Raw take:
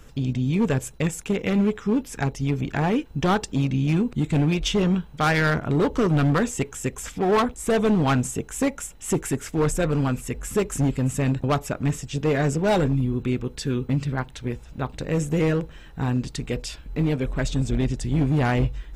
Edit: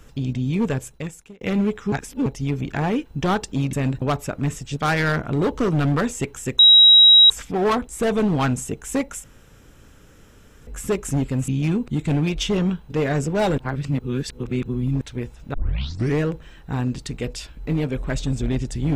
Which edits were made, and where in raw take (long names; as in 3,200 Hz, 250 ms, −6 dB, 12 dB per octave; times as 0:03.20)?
0:00.63–0:01.41: fade out
0:01.92–0:02.26: reverse
0:03.73–0:05.15: swap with 0:11.15–0:12.19
0:06.97: insert tone 3,840 Hz −7 dBFS 0.71 s
0:08.91–0:10.34: fill with room tone
0:12.87–0:14.30: reverse
0:14.83: tape start 0.66 s